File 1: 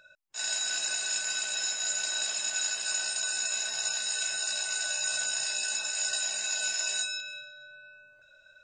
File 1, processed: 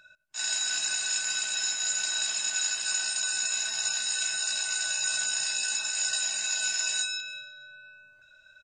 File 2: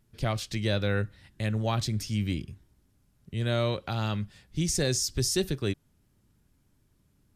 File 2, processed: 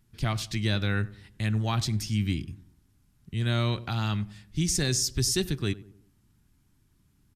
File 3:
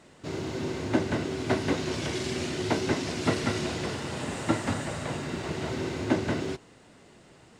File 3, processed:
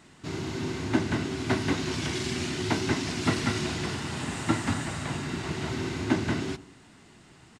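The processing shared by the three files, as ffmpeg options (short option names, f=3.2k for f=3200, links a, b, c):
-filter_complex "[0:a]equalizer=f=530:t=o:w=0.65:g=-11.5,asplit=2[a][b];[b]adelay=93,lowpass=f=1.1k:p=1,volume=-17dB,asplit=2[c][d];[d]adelay=93,lowpass=f=1.1k:p=1,volume=0.48,asplit=2[e][f];[f]adelay=93,lowpass=f=1.1k:p=1,volume=0.48,asplit=2[g][h];[h]adelay=93,lowpass=f=1.1k:p=1,volume=0.48[i];[a][c][e][g][i]amix=inputs=5:normalize=0,aresample=32000,aresample=44100,volume=2dB"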